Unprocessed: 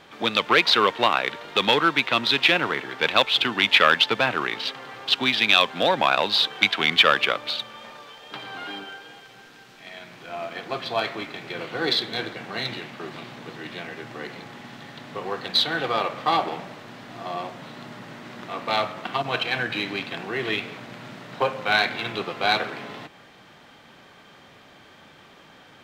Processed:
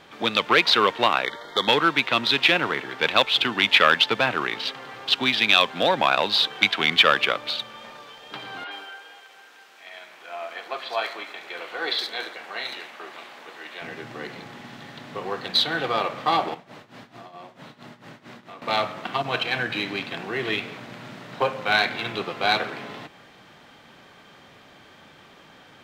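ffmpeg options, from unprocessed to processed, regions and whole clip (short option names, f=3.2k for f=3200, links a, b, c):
-filter_complex "[0:a]asettb=1/sr,asplit=3[a][b][c];[a]atrim=end=1.254[d];[b]atrim=start=1.25:end=1.68,asetpts=PTS-STARTPTS,afade=t=in:d=0.004:c=qsin,afade=t=out:st=0.426:d=0.004:c=qsin,asuperstop=centerf=2600:order=20:qfactor=3.3,equalizer=f=150:t=o:w=1.8:g=-6[e];[c]atrim=start=1.676[f];[d][e]acrossfade=d=0.004:c1=hsin:c2=qsin[g];[g][f]acrossfade=d=0.004:c1=qsin:c2=hsin,asettb=1/sr,asplit=3[h][i][j];[h]atrim=end=8.644[k];[i]atrim=start=8.64:end=13.82,asetpts=PTS-STARTPTS,afade=t=in:d=0.004:c=qsin,afade=t=out:st=5.176:d=0.004:c=qsin,highpass=560,acrossover=split=4500[l][m];[m]adelay=70[n];[l][n]amix=inputs=2:normalize=0,atrim=end_sample=228438[o];[j]atrim=start=13.816[p];[k][o]acrossfade=d=0.004:c1=hsin:c2=qsin[q];[q][p]acrossfade=d=0.004:c1=qsin:c2=hsin,asettb=1/sr,asplit=3[r][s][t];[r]atrim=end=16.544[u];[s]atrim=start=16.54:end=18.62,asetpts=PTS-STARTPTS,afade=t=in:d=0.004:c=qsin,afade=t=out:st=2.076:d=0.004:c=qsin,tremolo=f=4.5:d=0.89,acompressor=threshold=-38dB:ratio=6:attack=3.2:release=140:knee=1:detection=peak,aecho=1:1:75:0.126,atrim=end_sample=91728[v];[t]atrim=start=18.616[w];[u][v]acrossfade=d=0.004:c1=hsin:c2=qsin[x];[x][w]acrossfade=d=0.004:c1=qsin:c2=hsin"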